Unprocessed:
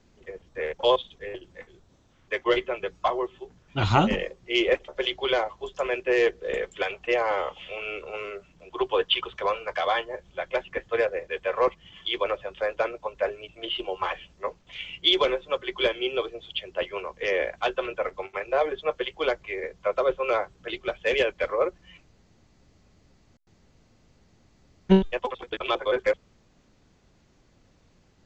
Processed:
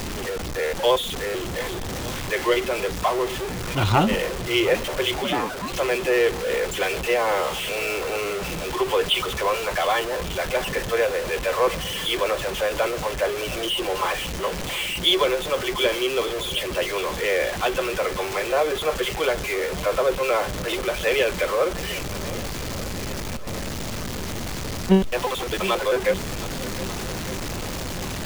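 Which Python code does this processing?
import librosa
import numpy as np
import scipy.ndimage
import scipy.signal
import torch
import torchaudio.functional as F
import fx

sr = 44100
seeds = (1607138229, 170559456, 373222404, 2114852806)

y = x + 0.5 * 10.0 ** (-24.0 / 20.0) * np.sign(x)
y = fx.ring_mod(y, sr, carrier_hz=fx.line((5.23, 150.0), (5.71, 780.0)), at=(5.23, 5.71), fade=0.02)
y = fx.echo_swing(y, sr, ms=1192, ratio=1.5, feedback_pct=53, wet_db=-17.0)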